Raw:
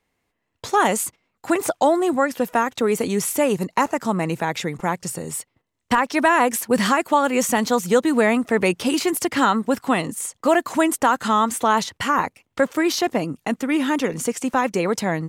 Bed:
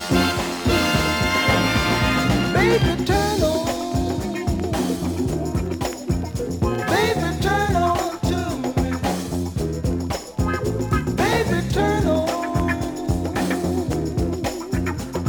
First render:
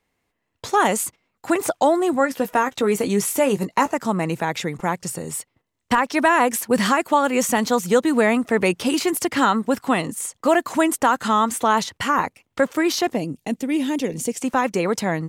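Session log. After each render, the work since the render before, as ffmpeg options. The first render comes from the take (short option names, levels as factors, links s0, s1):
-filter_complex "[0:a]asettb=1/sr,asplit=3[s0][s1][s2];[s0]atrim=end=2.194[s3];[s1]atrim=start=2.19:end=3.94,asetpts=PTS-STARTPTS,afade=t=in:d=0.004:c=qsin,afade=t=out:st=1.746:d=0.004:c=qsin,asplit=2[s4][s5];[s5]adelay=15,volume=0.335[s6];[s4][s6]amix=inputs=2:normalize=0,atrim=end_sample=77175[s7];[s2]atrim=start=3.936[s8];[s3][s7]acrossfade=d=0.004:c1=hsin:c2=qsin[s9];[s9][s8]acrossfade=d=0.004:c1=qsin:c2=hsin,asettb=1/sr,asplit=3[s10][s11][s12];[s10]atrim=end=13.154[s13];[s11]atrim=start=13.15:end=14.38,asetpts=PTS-STARTPTS,afade=t=in:d=0.004:c=qsin,afade=t=out:st=1.226:d=0.004:c=qsin,equalizer=f=1300:t=o:w=1.1:g=-14.5[s14];[s12]atrim=start=14.376[s15];[s13][s14]acrossfade=d=0.004:c1=hsin:c2=qsin[s16];[s16][s15]acrossfade=d=0.004:c1=qsin:c2=hsin"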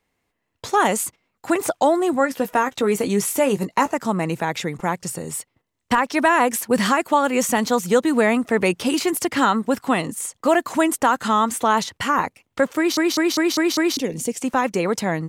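-filter_complex "[0:a]asplit=7[s0][s1][s2][s3][s4][s5][s6];[s0]atrim=end=12.972[s7];[s1]atrim=start=12.768:end=12.972[s8];[s2]atrim=start=12.768:end=12.972[s9];[s3]atrim=start=12.768:end=12.972[s10];[s4]atrim=start=12.768:end=12.972[s11];[s5]atrim=start=12.768:end=12.972[s12];[s6]atrim=start=13.968[s13];[s7][s8]acrossfade=d=0.004:c1=hsin:c2=hsin[s14];[s14][s9]acrossfade=d=0.004:c1=hsin:c2=hsin[s15];[s15][s10]acrossfade=d=0.004:c1=hsin:c2=hsin[s16];[s16][s11]acrossfade=d=0.004:c1=hsin:c2=hsin[s17];[s17][s12]acrossfade=d=0.004:c1=hsin:c2=hsin[s18];[s18][s13]acrossfade=d=0.004:c1=hsin:c2=hsin"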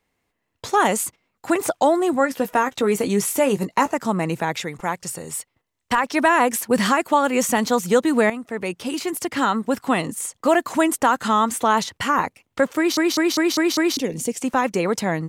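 -filter_complex "[0:a]asettb=1/sr,asplit=3[s0][s1][s2];[s0]atrim=end=4.554[s3];[s1]atrim=start=4.55:end=6.04,asetpts=PTS-STARTPTS,afade=t=in:d=0.004:c=qsin,afade=t=out:st=1.486:d=0.004:c=qsin,equalizer=f=200:w=0.46:g=-5.5[s4];[s2]atrim=start=6.036[s5];[s3][s4]acrossfade=d=0.004:c1=hsin:c2=qsin[s6];[s6][s5]acrossfade=d=0.004:c1=qsin:c2=hsin,asplit=2[s7][s8];[s7]atrim=end=8.3,asetpts=PTS-STARTPTS,afade=t=out:st=8.296:d=0.004:c=hsin:silence=0.251189[s9];[s8]atrim=start=8.3,asetpts=PTS-STARTPTS,afade=t=in:d=1.71:silence=0.251189[s10];[s9][s10]concat=n=2:v=0:a=1"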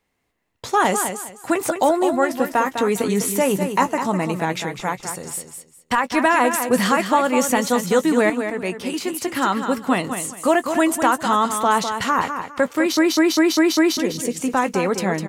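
-filter_complex "[0:a]asplit=2[s0][s1];[s1]adelay=16,volume=0.224[s2];[s0][s2]amix=inputs=2:normalize=0,asplit=2[s3][s4];[s4]aecho=0:1:203|406|609:0.398|0.0955|0.0229[s5];[s3][s5]amix=inputs=2:normalize=0"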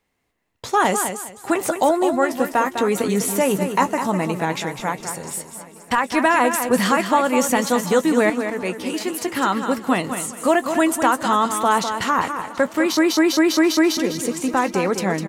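-af "aecho=1:1:732|1464|2196|2928:0.1|0.056|0.0314|0.0176"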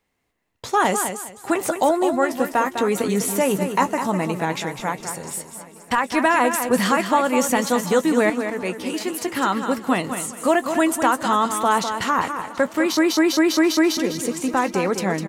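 -af "volume=0.891"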